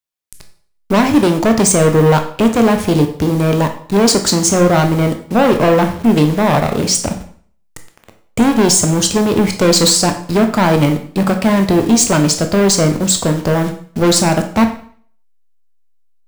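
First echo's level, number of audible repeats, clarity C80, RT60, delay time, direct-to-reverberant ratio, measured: none, none, 14.0 dB, 0.50 s, none, 5.5 dB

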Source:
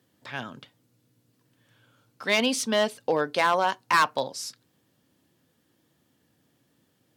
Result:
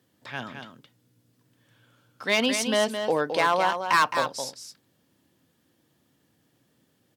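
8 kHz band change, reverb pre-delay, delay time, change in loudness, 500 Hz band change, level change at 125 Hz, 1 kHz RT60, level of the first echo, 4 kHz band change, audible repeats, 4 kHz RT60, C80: +0.5 dB, none, 0.216 s, +0.5 dB, +0.5 dB, +0.5 dB, none, -7.5 dB, +0.5 dB, 1, none, none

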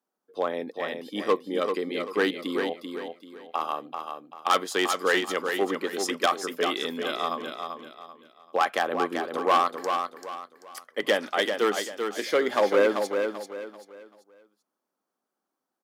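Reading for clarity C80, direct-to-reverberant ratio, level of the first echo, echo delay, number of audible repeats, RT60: none, none, -6.0 dB, 0.388 s, 3, none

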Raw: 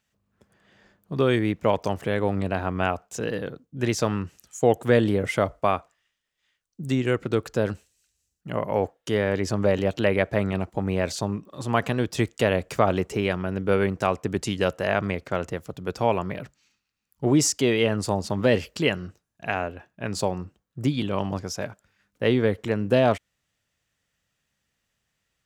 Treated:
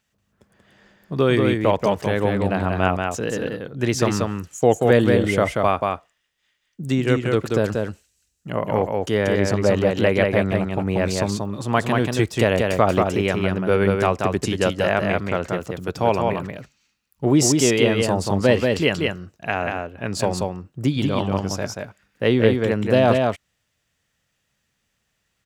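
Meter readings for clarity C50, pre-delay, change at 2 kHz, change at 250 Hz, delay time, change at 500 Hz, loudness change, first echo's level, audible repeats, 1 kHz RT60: none, none, +4.5 dB, +4.5 dB, 0.184 s, +4.5 dB, +4.5 dB, -3.5 dB, 1, none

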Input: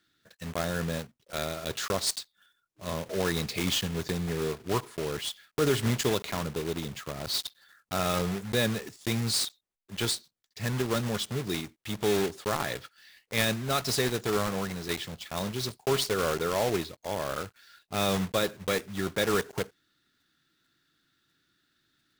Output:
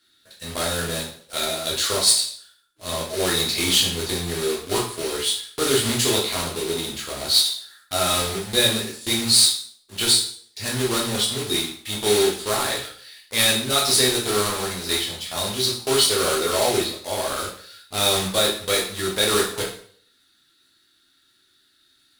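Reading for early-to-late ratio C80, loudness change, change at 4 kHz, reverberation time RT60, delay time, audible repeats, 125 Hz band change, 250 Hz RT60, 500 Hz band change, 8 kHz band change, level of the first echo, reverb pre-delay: 10.0 dB, +9.5 dB, +13.5 dB, 0.55 s, none, none, +0.5 dB, 0.50 s, +6.0 dB, +14.0 dB, none, 4 ms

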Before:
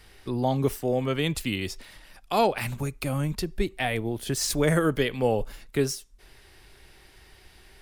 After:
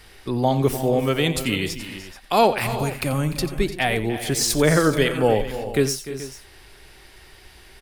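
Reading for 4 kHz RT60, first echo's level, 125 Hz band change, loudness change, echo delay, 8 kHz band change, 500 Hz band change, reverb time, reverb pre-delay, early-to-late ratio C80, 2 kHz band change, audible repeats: none, -14.0 dB, +4.5 dB, +5.5 dB, 89 ms, +6.5 dB, +6.0 dB, none, none, none, +6.5 dB, 4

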